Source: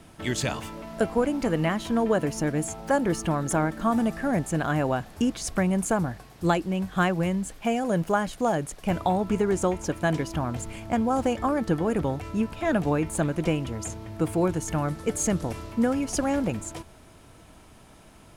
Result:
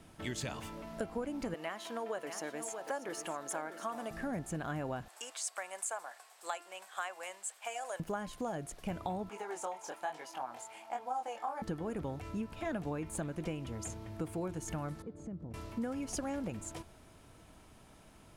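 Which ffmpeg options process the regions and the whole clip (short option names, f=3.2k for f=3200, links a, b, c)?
-filter_complex "[0:a]asettb=1/sr,asplit=3[a][b][c];[a]atrim=end=1.544[d];[b]atrim=start=1.54:end=4.11,asetpts=PTS-STARTPTS,afade=t=in:d=0.004:c=qsin,afade=t=out:st=2.566:d=0.004:c=qsin,highpass=500,aeval=exprs='val(0)+0.00562*sin(2*PI*670*n/s)':c=same,aecho=1:1:636:0.282,atrim=end_sample=113337[e];[c]atrim=start=4.106[f];[d][e]acrossfade=d=0.004:c1=hsin:c2=qsin[g];[g][f]acrossfade=d=0.004:c1=qsin:c2=hsin,asettb=1/sr,asplit=3[h][i][j];[h]atrim=end=5.084[k];[i]atrim=start=5.08:end=8,asetpts=PTS-STARTPTS,afade=t=in:d=0.004:c=qsin,afade=t=out:st=2.916:d=0.004:c=qsin,highpass=f=650:w=0.5412,highpass=f=650:w=1.3066,equalizer=f=8k:t=o:w=0.34:g=10.5[l];[j]atrim=start=7.996[m];[k][l]acrossfade=d=0.004:c1=hsin:c2=qsin[n];[n][m]acrossfade=d=0.004:c1=qsin:c2=hsin,asettb=1/sr,asplit=3[o][p][q];[o]atrim=end=9.294[r];[p]atrim=start=9.29:end=11.62,asetpts=PTS-STARTPTS,afade=t=in:d=0.004:c=qsin,afade=t=out:st=2.326:d=0.004:c=qsin,highpass=640,equalizer=f=820:w=3.8:g=12.5,flanger=delay=19.5:depth=6.4:speed=1.1[s];[q]atrim=start=11.616[t];[r][s]acrossfade=d=0.004:c1=hsin:c2=qsin[u];[u][t]acrossfade=d=0.004:c1=qsin:c2=hsin,asettb=1/sr,asplit=3[v][w][x];[v]atrim=end=15.024[y];[w]atrim=start=15.02:end=15.54,asetpts=PTS-STARTPTS,afade=t=in:d=0.004:c=qsin,afade=t=out:st=0.516:d=0.004:c=qsin,asubboost=boost=9:cutoff=200,bandpass=f=230:t=q:w=0.79,acompressor=threshold=-37dB:ratio=2.5:attack=3.2:release=140:knee=1:detection=peak[z];[x]atrim=start=15.536[aa];[y][z]acrossfade=d=0.004:c1=hsin:c2=qsin[ab];[ab][aa]acrossfade=d=0.004:c1=qsin:c2=hsin,bandreject=f=347.3:t=h:w=4,bandreject=f=694.6:t=h:w=4,bandreject=f=1.0419k:t=h:w=4,bandreject=f=1.3892k:t=h:w=4,bandreject=f=1.7365k:t=h:w=4,bandreject=f=2.0838k:t=h:w=4,bandreject=f=2.4311k:t=h:w=4,bandreject=f=2.7784k:t=h:w=4,bandreject=f=3.1257k:t=h:w=4,bandreject=f=3.473k:t=h:w=4,bandreject=f=3.8203k:t=h:w=4,bandreject=f=4.1676k:t=h:w=4,bandreject=f=4.5149k:t=h:w=4,bandreject=f=4.8622k:t=h:w=4,acompressor=threshold=-29dB:ratio=3,volume=-7dB"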